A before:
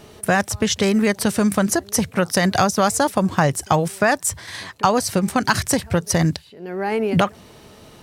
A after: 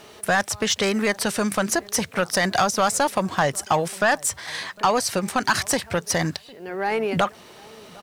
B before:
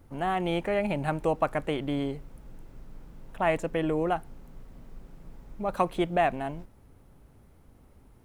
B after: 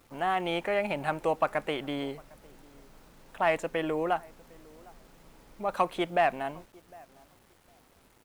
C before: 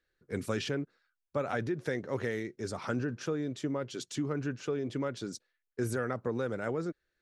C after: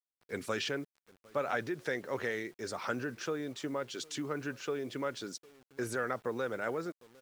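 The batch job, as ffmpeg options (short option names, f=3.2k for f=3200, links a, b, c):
-filter_complex "[0:a]asplit=2[a][b];[b]highpass=f=720:p=1,volume=15dB,asoftclip=type=tanh:threshold=-1dB[c];[a][c]amix=inputs=2:normalize=0,lowpass=f=6.5k:p=1,volume=-6dB,asplit=2[d][e];[e]adelay=755,lowpass=f=1.1k:p=1,volume=-23.5dB,asplit=2[f][g];[g]adelay=755,lowpass=f=1.1k:p=1,volume=0.2[h];[d][f][h]amix=inputs=3:normalize=0,acrusher=bits=8:mix=0:aa=0.000001,volume=-7dB"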